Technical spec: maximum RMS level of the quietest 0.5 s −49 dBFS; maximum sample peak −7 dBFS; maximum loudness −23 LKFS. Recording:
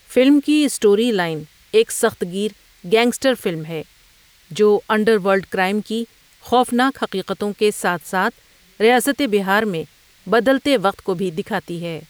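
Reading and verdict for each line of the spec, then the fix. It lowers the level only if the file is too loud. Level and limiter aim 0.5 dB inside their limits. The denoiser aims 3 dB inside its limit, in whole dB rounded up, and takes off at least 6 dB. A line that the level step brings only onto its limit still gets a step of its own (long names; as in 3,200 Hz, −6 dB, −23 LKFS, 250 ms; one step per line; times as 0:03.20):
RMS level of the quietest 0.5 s −52 dBFS: in spec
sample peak −4.5 dBFS: out of spec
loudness −18.5 LKFS: out of spec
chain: level −5 dB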